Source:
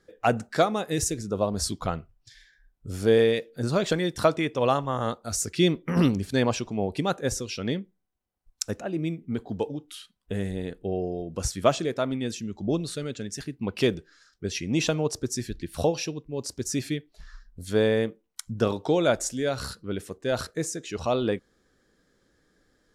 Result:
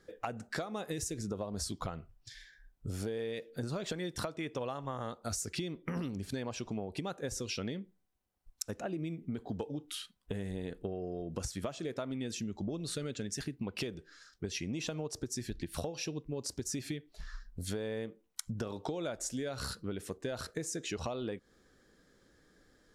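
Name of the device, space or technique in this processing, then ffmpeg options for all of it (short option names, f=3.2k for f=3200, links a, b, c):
serial compression, peaks first: -af "acompressor=threshold=-31dB:ratio=6,acompressor=threshold=-36dB:ratio=3,volume=1dB"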